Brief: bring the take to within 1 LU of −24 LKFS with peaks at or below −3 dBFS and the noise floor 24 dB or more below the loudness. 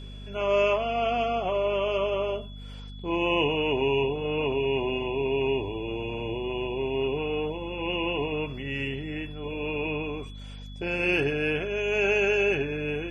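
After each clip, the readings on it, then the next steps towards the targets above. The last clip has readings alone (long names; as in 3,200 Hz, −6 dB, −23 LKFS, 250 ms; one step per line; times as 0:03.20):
mains hum 50 Hz; hum harmonics up to 250 Hz; level of the hum −38 dBFS; interfering tone 3,400 Hz; level of the tone −49 dBFS; integrated loudness −27.5 LKFS; sample peak −12.5 dBFS; target loudness −24.0 LKFS
→ hum removal 50 Hz, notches 5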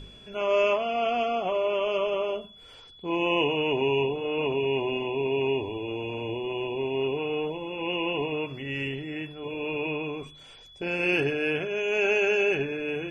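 mains hum none found; interfering tone 3,400 Hz; level of the tone −49 dBFS
→ notch filter 3,400 Hz, Q 30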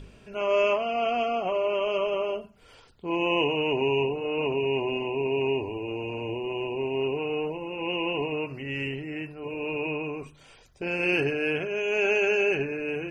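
interfering tone none found; integrated loudness −27.5 LKFS; sample peak −12.5 dBFS; target loudness −24.0 LKFS
→ level +3.5 dB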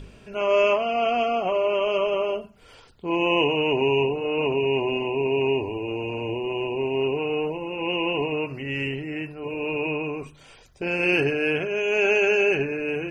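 integrated loudness −24.0 LKFS; sample peak −9.0 dBFS; background noise floor −51 dBFS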